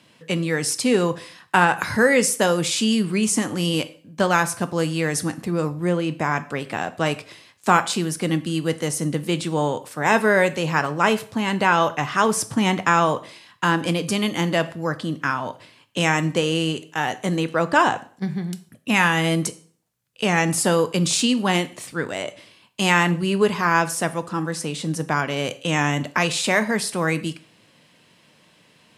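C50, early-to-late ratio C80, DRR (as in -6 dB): 17.0 dB, 20.5 dB, 11.0 dB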